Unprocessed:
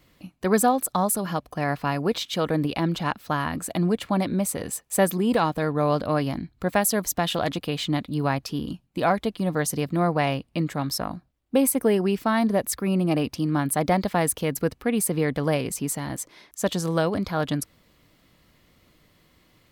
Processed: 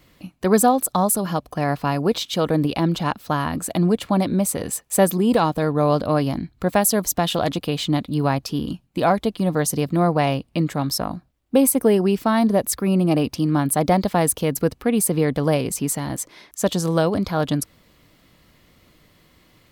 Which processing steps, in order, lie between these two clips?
dynamic bell 1.9 kHz, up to -5 dB, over -41 dBFS, Q 1.2; trim +4.5 dB

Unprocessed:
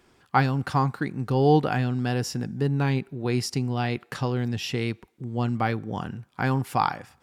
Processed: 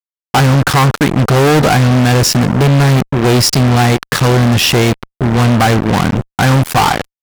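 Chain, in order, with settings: AM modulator 80 Hz, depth 35%; fuzz box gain 41 dB, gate -40 dBFS; trim +6 dB

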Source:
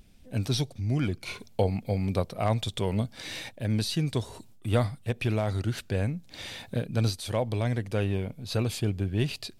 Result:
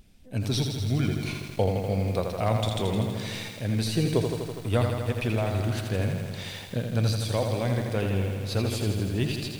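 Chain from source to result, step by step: 3.87–4.27 s: graphic EQ 500/2000/4000 Hz +10/+3/-5 dB; bit-crushed delay 82 ms, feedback 80%, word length 8-bit, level -5.5 dB

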